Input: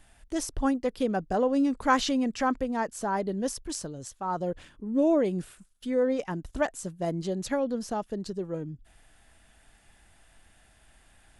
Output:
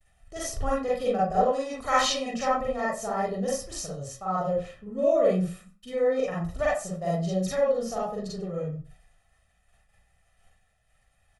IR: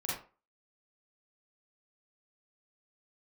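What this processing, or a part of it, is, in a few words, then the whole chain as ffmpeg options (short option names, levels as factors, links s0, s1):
microphone above a desk: -filter_complex "[0:a]agate=range=0.0224:threshold=0.00355:ratio=3:detection=peak,aecho=1:1:1.6:0.79[s0];[1:a]atrim=start_sample=2205[s1];[s0][s1]afir=irnorm=-1:irlink=0,asplit=2[s2][s3];[s3]adelay=93.29,volume=0.0708,highshelf=f=4000:g=-2.1[s4];[s2][s4]amix=inputs=2:normalize=0,asettb=1/sr,asplit=3[s5][s6][s7];[s5]atrim=end=1.524[s8];[s6]atrim=start=1.52:end=2.34,asetpts=PTS-STARTPTS,afade=t=in:d=0.004:c=qsin,afade=t=out:st=0.816:d=0.004:c=qsin,tiltshelf=f=1200:g=-4.5[s9];[s7]atrim=start=2.336[s10];[s8][s9]acrossfade=d=0.004:c1=hsin:c2=qsin[s11];[s11][s10]acrossfade=d=0.004:c1=qsin:c2=hsin,volume=0.708"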